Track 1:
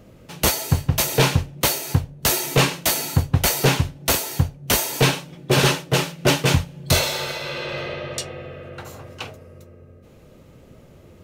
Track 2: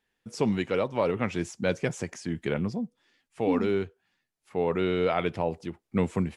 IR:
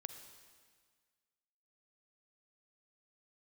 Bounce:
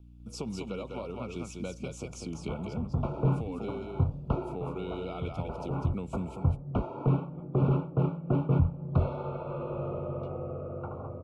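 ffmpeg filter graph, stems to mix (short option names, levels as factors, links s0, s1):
-filter_complex "[0:a]lowpass=f=1300:w=0.5412,lowpass=f=1300:w=1.3066,alimiter=limit=0.2:level=0:latency=1:release=42,adelay=2050,volume=1[s0];[1:a]acompressor=threshold=0.0282:ratio=5,aeval=exprs='val(0)+0.00398*(sin(2*PI*60*n/s)+sin(2*PI*2*60*n/s)/2+sin(2*PI*3*60*n/s)/3+sin(2*PI*4*60*n/s)/4+sin(2*PI*5*60*n/s)/5)':c=same,volume=0.75,asplit=3[s1][s2][s3];[s2]volume=0.562[s4];[s3]apad=whole_len=585812[s5];[s0][s5]sidechaincompress=threshold=0.00631:ratio=8:attack=5.9:release=263[s6];[s4]aecho=0:1:200:1[s7];[s6][s1][s7]amix=inputs=3:normalize=0,acrossover=split=320|3000[s8][s9][s10];[s9]acompressor=threshold=0.0158:ratio=6[s11];[s8][s11][s10]amix=inputs=3:normalize=0,asuperstop=centerf=1800:order=20:qfactor=2.4"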